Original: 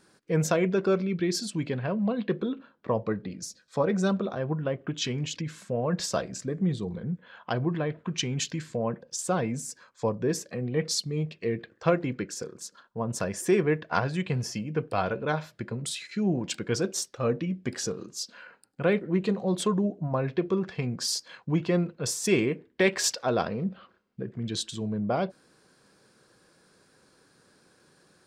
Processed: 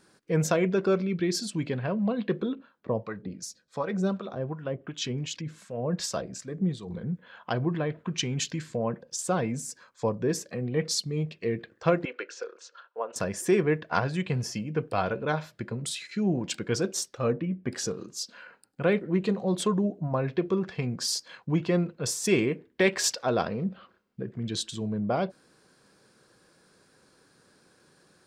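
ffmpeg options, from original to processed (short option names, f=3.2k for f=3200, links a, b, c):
-filter_complex "[0:a]asettb=1/sr,asplit=3[a][b][c];[a]atrim=end=2.554[d];[b]atrim=start=2.55:end=6.9,asetpts=PTS-STARTPTS,afade=t=in:d=0.004:c=qsin,afade=t=out:st=4.346:d=0.004:c=qsin,acrossover=split=740[e][f];[e]aeval=exprs='val(0)*(1-0.7/2+0.7/2*cos(2*PI*2.7*n/s))':c=same[g];[f]aeval=exprs='val(0)*(1-0.7/2-0.7/2*cos(2*PI*2.7*n/s))':c=same[h];[g][h]amix=inputs=2:normalize=0[i];[c]atrim=start=6.896[j];[d][i]acrossfade=d=0.004:c1=hsin:c2=qsin[k];[k][j]acrossfade=d=0.004:c1=qsin:c2=hsin,asettb=1/sr,asplit=3[l][m][n];[l]atrim=end=12.054[o];[m]atrim=start=12.05:end=13.16,asetpts=PTS-STARTPTS,afade=t=in:d=0.004:c=qsin,afade=t=out:st=1.106:d=0.004:c=qsin,highpass=f=440:w=0.5412,highpass=f=440:w=1.3066,equalizer=f=500:t=q:w=4:g=4,equalizer=f=1.4k:t=q:w=4:g=7,equalizer=f=2.7k:t=q:w=4:g=7,equalizer=f=5k:t=q:w=4:g=-5,lowpass=f=5.4k:w=0.5412,lowpass=f=5.4k:w=1.3066[p];[n]atrim=start=13.156[q];[o][p]acrossfade=d=0.004:c1=hsin:c2=qsin[r];[r][q]acrossfade=d=0.004:c1=qsin:c2=hsin,asettb=1/sr,asplit=3[s][t][u];[s]atrim=end=17.324[v];[t]atrim=start=17.32:end=17.72,asetpts=PTS-STARTPTS,afade=t=in:d=0.004:c=qsin,afade=t=out:st=0.396:d=0.004:c=qsin,lowpass=2.1k[w];[u]atrim=start=17.716[x];[v][w]acrossfade=d=0.004:c1=hsin:c2=qsin[y];[y][x]acrossfade=d=0.004:c1=qsin:c2=hsin"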